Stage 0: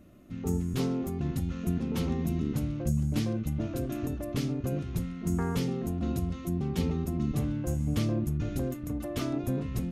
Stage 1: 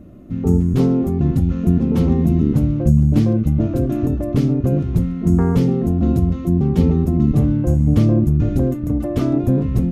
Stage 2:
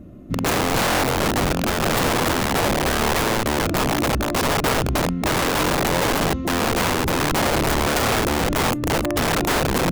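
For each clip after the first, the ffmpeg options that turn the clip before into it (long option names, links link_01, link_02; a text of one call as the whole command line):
ffmpeg -i in.wav -af "tiltshelf=frequency=1100:gain=7.5,volume=7.5dB" out.wav
ffmpeg -i in.wav -af "aeval=exprs='0.841*(cos(1*acos(clip(val(0)/0.841,-1,1)))-cos(1*PI/2))+0.0596*(cos(4*acos(clip(val(0)/0.841,-1,1)))-cos(4*PI/2))':channel_layout=same,aeval=exprs='(mod(5.62*val(0)+1,2)-1)/5.62':channel_layout=same" out.wav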